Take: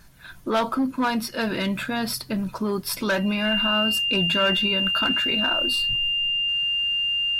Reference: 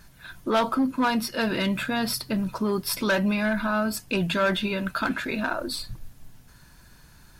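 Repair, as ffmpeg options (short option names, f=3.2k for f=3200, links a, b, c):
-af "bandreject=f=2.8k:w=30"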